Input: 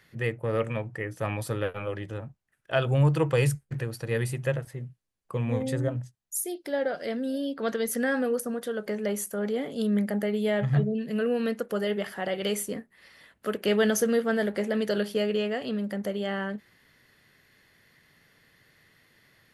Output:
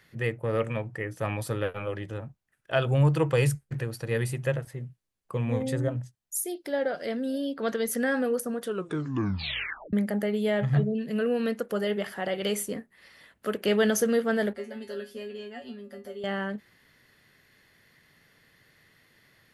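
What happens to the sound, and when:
8.62 tape stop 1.31 s
14.53–16.24 resonator 80 Hz, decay 0.2 s, harmonics odd, mix 100%

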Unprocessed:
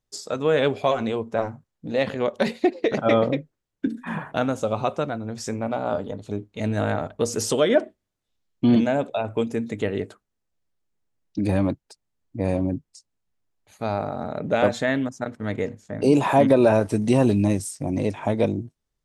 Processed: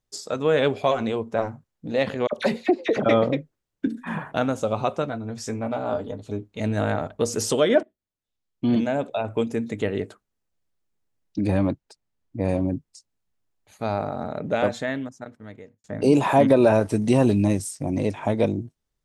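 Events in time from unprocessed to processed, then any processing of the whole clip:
2.27–3.06 dispersion lows, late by 51 ms, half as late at 1400 Hz
5.02–6.44 notch comb 180 Hz
7.83–9.31 fade in, from -18 dB
11.41–12.49 high shelf 7000 Hz -7 dB
14.21–15.84 fade out

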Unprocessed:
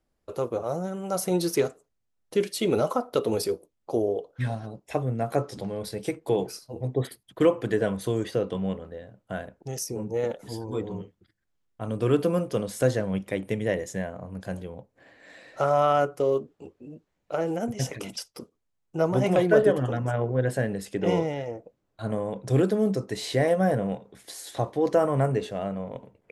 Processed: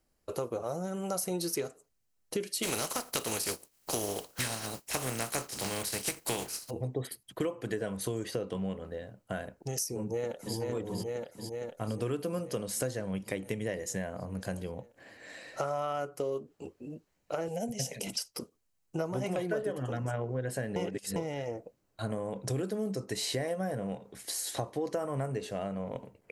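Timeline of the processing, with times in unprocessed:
2.62–6.69 spectral contrast lowered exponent 0.44
10–10.57 echo throw 0.46 s, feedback 70%, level -5 dB
17.48–18.07 fixed phaser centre 330 Hz, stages 6
20.76–21.16 reverse
whole clip: high shelf 3700 Hz +8.5 dB; notch 3500 Hz, Q 12; compressor 5:1, threshold -31 dBFS

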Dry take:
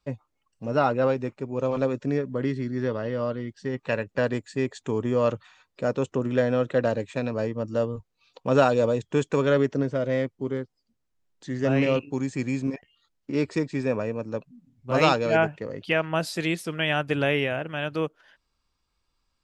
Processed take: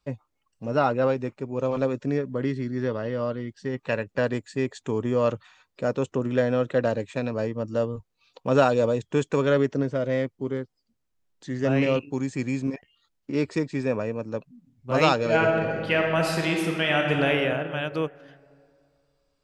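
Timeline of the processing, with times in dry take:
15.15–17.28 reverb throw, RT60 2.3 s, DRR 1 dB

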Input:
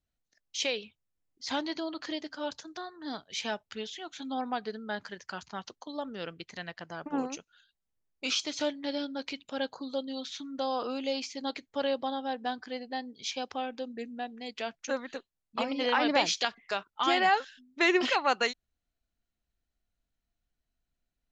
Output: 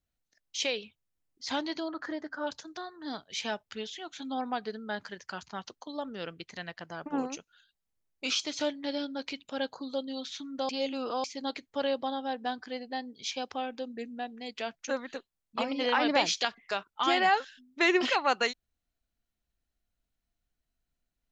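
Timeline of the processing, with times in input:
1.88–2.47 resonant high shelf 2100 Hz -9 dB, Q 3
10.69–11.24 reverse

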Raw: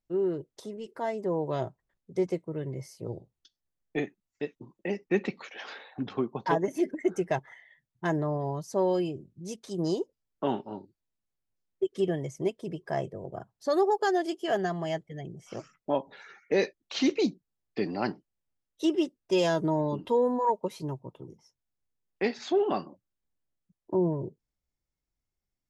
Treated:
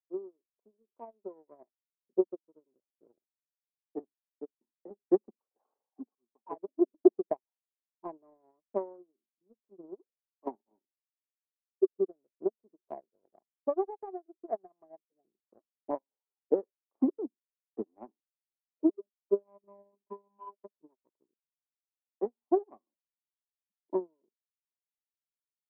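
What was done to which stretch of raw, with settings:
6.15–6.76 fade in
9.99–10.47 transient shaper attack -12 dB, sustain +6 dB
18.89–20.76 robotiser 200 Hz
whole clip: Chebyshev band-pass 220–1100 Hz, order 4; transient shaper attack +9 dB, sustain -9 dB; upward expander 2.5:1, over -35 dBFS; gain -1.5 dB

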